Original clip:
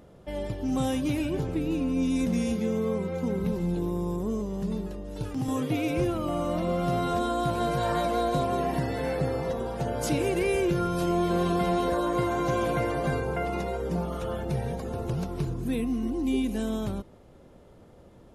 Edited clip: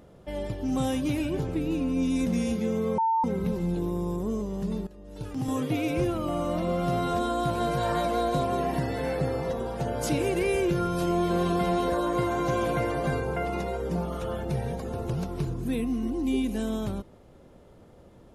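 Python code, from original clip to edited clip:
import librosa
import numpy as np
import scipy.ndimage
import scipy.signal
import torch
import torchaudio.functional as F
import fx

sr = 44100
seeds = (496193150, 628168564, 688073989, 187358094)

y = fx.edit(x, sr, fx.bleep(start_s=2.98, length_s=0.26, hz=901.0, db=-21.0),
    fx.fade_in_from(start_s=4.87, length_s=0.59, floor_db=-15.5), tone=tone)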